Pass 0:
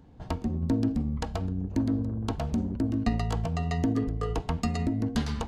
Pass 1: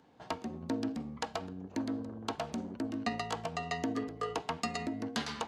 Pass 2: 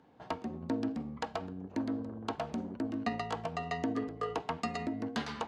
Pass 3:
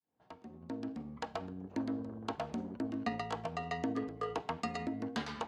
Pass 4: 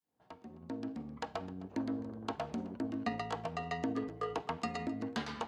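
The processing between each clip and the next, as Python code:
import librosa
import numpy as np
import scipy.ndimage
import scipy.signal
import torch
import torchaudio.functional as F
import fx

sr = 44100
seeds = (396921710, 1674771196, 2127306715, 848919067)

y1 = fx.weighting(x, sr, curve='A')
y2 = fx.high_shelf(y1, sr, hz=4000.0, db=-11.0)
y2 = y2 * librosa.db_to_amplitude(1.0)
y3 = fx.fade_in_head(y2, sr, length_s=1.44)
y3 = y3 * librosa.db_to_amplitude(-2.0)
y4 = y3 + 10.0 ** (-19.5 / 20.0) * np.pad(y3, (int(260 * sr / 1000.0), 0))[:len(y3)]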